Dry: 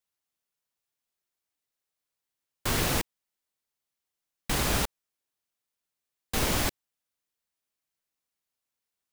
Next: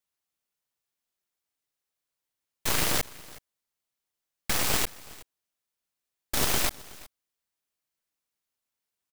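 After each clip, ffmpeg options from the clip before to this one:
-af "aeval=exprs='0.211*(cos(1*acos(clip(val(0)/0.211,-1,1)))-cos(1*PI/2))+0.0299*(cos(3*acos(clip(val(0)/0.211,-1,1)))-cos(3*PI/2))+0.0473*(cos(7*acos(clip(val(0)/0.211,-1,1)))-cos(7*PI/2))+0.0473*(cos(8*acos(clip(val(0)/0.211,-1,1)))-cos(8*PI/2))':c=same,aecho=1:1:371:0.0891"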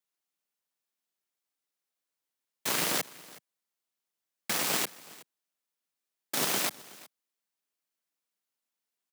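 -af "highpass=f=160:w=0.5412,highpass=f=160:w=1.3066,volume=0.794"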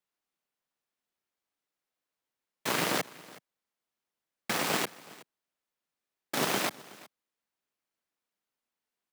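-af "highshelf=f=3800:g=-10.5,volume=1.58"

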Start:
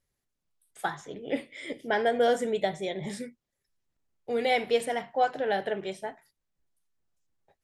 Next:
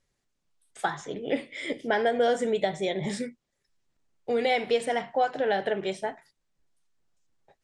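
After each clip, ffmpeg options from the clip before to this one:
-af "lowpass=f=8800:w=0.5412,lowpass=f=8800:w=1.3066,equalizer=f=73:w=1.5:g=-5,acompressor=threshold=0.0316:ratio=2,volume=1.88"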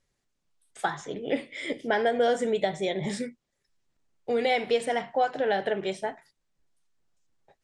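-af anull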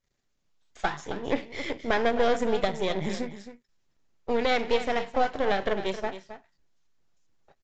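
-af "aeval=exprs='if(lt(val(0),0),0.251*val(0),val(0))':c=same,aecho=1:1:267:0.251,aresample=16000,aresample=44100,volume=1.41"

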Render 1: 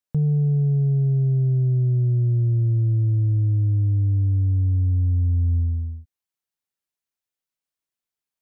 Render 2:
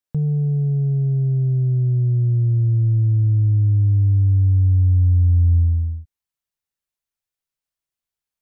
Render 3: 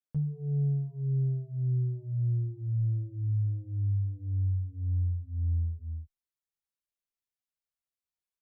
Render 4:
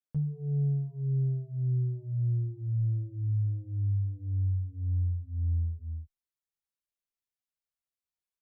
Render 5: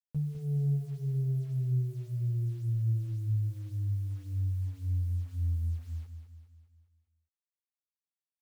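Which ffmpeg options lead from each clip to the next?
-af "asubboost=boost=2:cutoff=140"
-filter_complex "[0:a]alimiter=limit=0.141:level=0:latency=1:release=158,asplit=2[s0][s1];[s1]adelay=8.9,afreqshift=-2[s2];[s0][s2]amix=inputs=2:normalize=1,volume=0.473"
-af anull
-filter_complex "[0:a]acrusher=bits=9:mix=0:aa=0.000001,asplit=2[s0][s1];[s1]aecho=0:1:204|408|612|816|1020|1224:0.376|0.188|0.094|0.047|0.0235|0.0117[s2];[s0][s2]amix=inputs=2:normalize=0,volume=0.794"

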